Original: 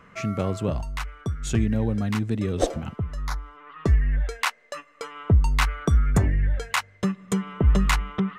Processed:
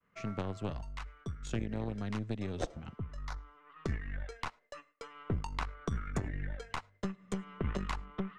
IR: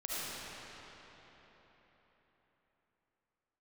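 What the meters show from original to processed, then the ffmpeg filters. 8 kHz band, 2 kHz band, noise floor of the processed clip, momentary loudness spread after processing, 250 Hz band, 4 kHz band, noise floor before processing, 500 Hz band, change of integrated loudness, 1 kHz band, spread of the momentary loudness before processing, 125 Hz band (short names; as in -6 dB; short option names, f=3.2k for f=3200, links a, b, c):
-17.0 dB, -14.5 dB, -70 dBFS, 8 LU, -13.0 dB, -15.0 dB, -54 dBFS, -12.0 dB, -14.5 dB, -11.5 dB, 12 LU, -15.0 dB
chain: -filter_complex "[0:a]aeval=exprs='0.501*(cos(1*acos(clip(val(0)/0.501,-1,1)))-cos(1*PI/2))+0.0891*(cos(3*acos(clip(val(0)/0.501,-1,1)))-cos(3*PI/2))+0.0447*(cos(4*acos(clip(val(0)/0.501,-1,1)))-cos(4*PI/2))+0.00562*(cos(5*acos(clip(val(0)/0.501,-1,1)))-cos(5*PI/2))+0.0158*(cos(7*acos(clip(val(0)/0.501,-1,1)))-cos(7*PI/2))':c=same,lowpass=6.9k,acrossover=split=170|1200[a][b][c];[a]acompressor=threshold=-34dB:ratio=4[d];[b]acompressor=threshold=-35dB:ratio=4[e];[c]acompressor=threshold=-44dB:ratio=4[f];[d][e][f]amix=inputs=3:normalize=0,agate=range=-33dB:threshold=-54dB:ratio=3:detection=peak,asplit=2[g][h];[1:a]atrim=start_sample=2205,afade=t=out:st=0.16:d=0.01,atrim=end_sample=7497[i];[h][i]afir=irnorm=-1:irlink=0,volume=-24.5dB[j];[g][j]amix=inputs=2:normalize=0,volume=-2dB"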